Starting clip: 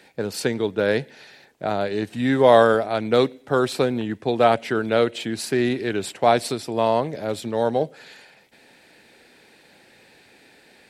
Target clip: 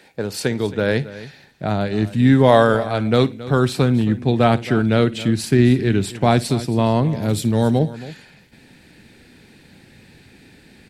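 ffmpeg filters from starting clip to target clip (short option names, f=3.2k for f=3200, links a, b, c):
-filter_complex "[0:a]asettb=1/sr,asplit=3[a][b][c];[a]atrim=end=7.224[d];[b]atrim=start=7.22:end=7.79,asetpts=PTS-STARTPTS,afade=t=in:d=0.004:c=qsin,afade=t=out:st=0.566:d=0.004:c=qsin,highshelf=f=5.3k:g=11[e];[c]atrim=start=7.786[f];[d][e]acrossfade=d=0.004:c1=hsin:c2=qsin[g];[g][f]acrossfade=d=0.004:c1=qsin:c2=hsin,aecho=1:1:56|271:0.112|0.15,asubboost=boost=7.5:cutoff=210,volume=2dB"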